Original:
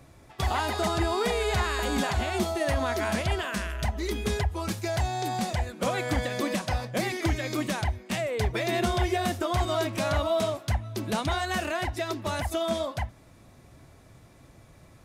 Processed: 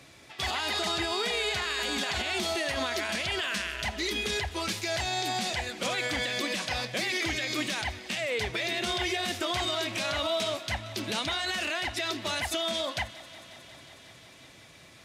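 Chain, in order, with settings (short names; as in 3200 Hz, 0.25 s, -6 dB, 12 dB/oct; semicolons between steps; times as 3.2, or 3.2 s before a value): weighting filter D; limiter -21 dBFS, peak gain reduction 10.5 dB; on a send: thinning echo 0.181 s, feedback 84%, high-pass 200 Hz, level -19.5 dB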